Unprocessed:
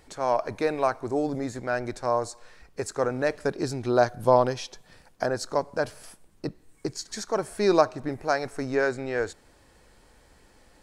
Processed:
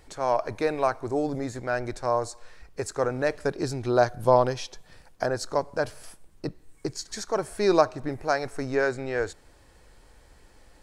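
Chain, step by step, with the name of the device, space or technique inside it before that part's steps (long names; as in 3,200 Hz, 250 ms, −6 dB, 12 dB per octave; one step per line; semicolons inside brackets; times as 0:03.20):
low shelf boost with a cut just above (low-shelf EQ 74 Hz +6.5 dB; parametric band 220 Hz −3.5 dB 0.53 octaves)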